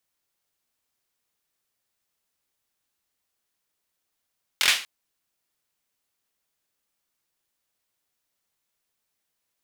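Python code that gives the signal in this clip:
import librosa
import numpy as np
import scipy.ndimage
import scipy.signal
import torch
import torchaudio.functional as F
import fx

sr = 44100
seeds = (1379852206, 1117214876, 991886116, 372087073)

y = fx.drum_clap(sr, seeds[0], length_s=0.24, bursts=4, spacing_ms=23, hz=2600.0, decay_s=0.37)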